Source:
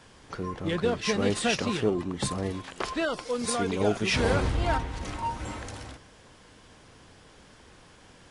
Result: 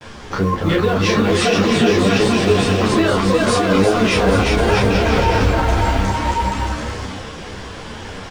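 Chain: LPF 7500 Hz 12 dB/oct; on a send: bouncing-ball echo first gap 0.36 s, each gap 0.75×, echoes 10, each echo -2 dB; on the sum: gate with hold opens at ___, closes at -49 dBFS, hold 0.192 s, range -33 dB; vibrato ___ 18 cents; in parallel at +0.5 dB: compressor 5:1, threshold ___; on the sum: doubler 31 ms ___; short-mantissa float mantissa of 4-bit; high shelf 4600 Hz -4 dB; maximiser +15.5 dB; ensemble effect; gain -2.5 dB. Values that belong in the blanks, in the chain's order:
-46 dBFS, 0.33 Hz, -39 dBFS, -2 dB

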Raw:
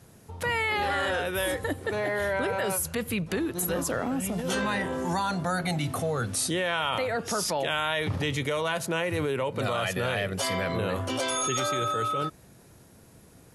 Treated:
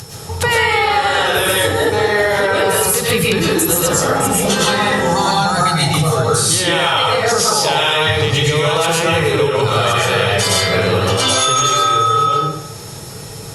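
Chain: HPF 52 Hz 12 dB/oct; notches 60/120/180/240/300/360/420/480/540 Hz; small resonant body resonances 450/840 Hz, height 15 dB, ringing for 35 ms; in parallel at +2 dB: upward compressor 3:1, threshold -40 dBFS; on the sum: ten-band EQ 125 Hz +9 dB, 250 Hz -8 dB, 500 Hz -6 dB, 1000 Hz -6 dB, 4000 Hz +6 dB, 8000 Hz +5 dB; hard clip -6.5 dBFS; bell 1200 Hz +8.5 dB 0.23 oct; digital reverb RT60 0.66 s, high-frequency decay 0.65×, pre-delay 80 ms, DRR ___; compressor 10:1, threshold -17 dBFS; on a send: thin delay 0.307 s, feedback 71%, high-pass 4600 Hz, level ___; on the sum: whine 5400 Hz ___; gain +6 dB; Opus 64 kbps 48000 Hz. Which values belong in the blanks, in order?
-5.5 dB, -21.5 dB, -46 dBFS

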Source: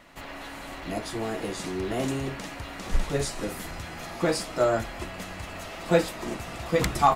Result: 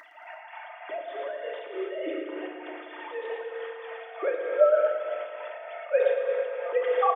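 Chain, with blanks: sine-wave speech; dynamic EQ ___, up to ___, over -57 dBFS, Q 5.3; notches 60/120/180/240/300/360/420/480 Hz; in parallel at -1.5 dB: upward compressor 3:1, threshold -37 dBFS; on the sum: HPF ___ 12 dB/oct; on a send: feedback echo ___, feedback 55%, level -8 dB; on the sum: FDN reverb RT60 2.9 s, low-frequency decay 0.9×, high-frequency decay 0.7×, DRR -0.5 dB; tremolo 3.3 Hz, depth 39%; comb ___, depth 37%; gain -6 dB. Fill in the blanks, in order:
2700 Hz, -3 dB, 330 Hz, 0.112 s, 3.2 ms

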